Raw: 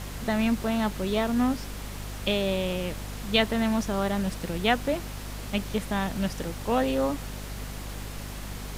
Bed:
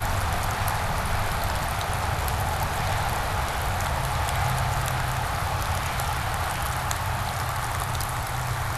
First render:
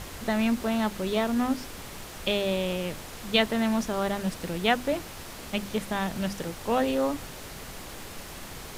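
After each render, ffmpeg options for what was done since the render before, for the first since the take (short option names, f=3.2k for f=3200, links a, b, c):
-af "bandreject=f=50:t=h:w=6,bandreject=f=100:t=h:w=6,bandreject=f=150:t=h:w=6,bandreject=f=200:t=h:w=6,bandreject=f=250:t=h:w=6,bandreject=f=300:t=h:w=6"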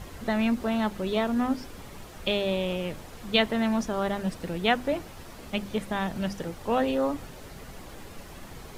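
-af "afftdn=nr=8:nf=-42"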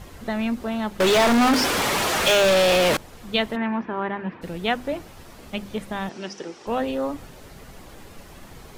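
-filter_complex "[0:a]asettb=1/sr,asplit=3[a][b][c];[a]atrim=end=1.004[d];[b]atrim=start=1:end=2.97,asetpts=PTS-STARTPTS,afade=t=in:d=0.004:c=qsin,afade=t=out:st=1.966:d=0.004:c=qsin,asplit=2[e][f];[f]highpass=f=720:p=1,volume=36dB,asoftclip=type=tanh:threshold=-10.5dB[g];[e][g]amix=inputs=2:normalize=0,lowpass=f=6.8k:p=1,volume=-6dB[h];[c]atrim=start=2.966[i];[d][h]acrossfade=d=0.004:c1=hsin:c2=qsin[j];[j][i]acrossfade=d=0.004:c1=qsin:c2=hsin,asplit=3[k][l][m];[k]afade=t=out:st=3.55:d=0.02[n];[l]highpass=140,equalizer=f=340:t=q:w=4:g=6,equalizer=f=610:t=q:w=4:g=-5,equalizer=f=960:t=q:w=4:g=8,equalizer=f=1.7k:t=q:w=4:g=6,equalizer=f=2.4k:t=q:w=4:g=4,lowpass=f=2.7k:w=0.5412,lowpass=f=2.7k:w=1.3066,afade=t=in:st=3.55:d=0.02,afade=t=out:st=4.41:d=0.02[o];[m]afade=t=in:st=4.41:d=0.02[p];[n][o][p]amix=inputs=3:normalize=0,asettb=1/sr,asplit=3[q][r][s];[q]atrim=end=6.094[t];[r]atrim=start=6.09:end=6.67,asetpts=PTS-STARTPTS,afade=t=in:d=0.004:c=qsin,afade=t=out:st=0.576:d=0.004:c=qsin,highpass=300,equalizer=f=370:t=q:w=4:g=9,equalizer=f=600:t=q:w=4:g=-4,equalizer=f=2.6k:t=q:w=4:g=3,equalizer=f=5.5k:t=q:w=4:g=9,lowpass=f=7.8k:w=0.5412,lowpass=f=7.8k:w=1.3066[u];[s]atrim=start=6.666[v];[t][u]acrossfade=d=0.004:c1=hsin:c2=qsin[w];[w][v]acrossfade=d=0.004:c1=qsin:c2=hsin"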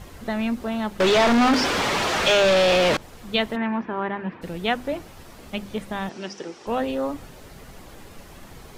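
-filter_complex "[0:a]acrossover=split=6900[a][b];[b]acompressor=threshold=-47dB:ratio=4:attack=1:release=60[c];[a][c]amix=inputs=2:normalize=0"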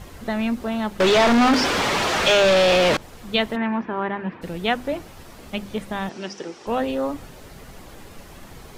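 -af "volume=1.5dB"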